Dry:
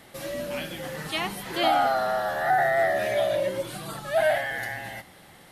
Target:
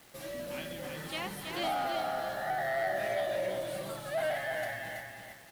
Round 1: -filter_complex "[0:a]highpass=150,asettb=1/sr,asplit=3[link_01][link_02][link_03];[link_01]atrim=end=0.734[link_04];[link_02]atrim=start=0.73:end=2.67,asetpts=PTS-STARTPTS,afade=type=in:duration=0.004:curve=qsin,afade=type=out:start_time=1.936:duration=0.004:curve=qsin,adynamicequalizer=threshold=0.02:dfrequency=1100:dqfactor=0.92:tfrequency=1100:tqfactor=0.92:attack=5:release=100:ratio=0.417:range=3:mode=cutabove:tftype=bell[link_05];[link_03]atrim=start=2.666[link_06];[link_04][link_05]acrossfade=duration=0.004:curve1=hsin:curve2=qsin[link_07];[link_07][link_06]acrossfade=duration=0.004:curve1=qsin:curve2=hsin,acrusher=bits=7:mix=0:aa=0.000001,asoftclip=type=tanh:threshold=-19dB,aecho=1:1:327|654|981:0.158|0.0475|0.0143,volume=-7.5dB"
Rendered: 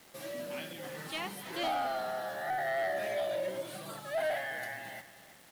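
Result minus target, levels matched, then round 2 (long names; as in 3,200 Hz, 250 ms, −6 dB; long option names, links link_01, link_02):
echo-to-direct −11 dB; 125 Hz band −3.5 dB
-filter_complex "[0:a]asettb=1/sr,asplit=3[link_01][link_02][link_03];[link_01]atrim=end=0.734[link_04];[link_02]atrim=start=0.73:end=2.67,asetpts=PTS-STARTPTS,afade=type=in:duration=0.004:curve=qsin,afade=type=out:start_time=1.936:duration=0.004:curve=qsin,adynamicequalizer=threshold=0.02:dfrequency=1100:dqfactor=0.92:tfrequency=1100:tqfactor=0.92:attack=5:release=100:ratio=0.417:range=3:mode=cutabove:tftype=bell[link_05];[link_03]atrim=start=2.666[link_06];[link_04][link_05]acrossfade=duration=0.004:curve1=hsin:curve2=qsin[link_07];[link_07][link_06]acrossfade=duration=0.004:curve1=qsin:curve2=hsin,acrusher=bits=7:mix=0:aa=0.000001,asoftclip=type=tanh:threshold=-19dB,aecho=1:1:327|654|981|1308:0.562|0.169|0.0506|0.0152,volume=-7.5dB"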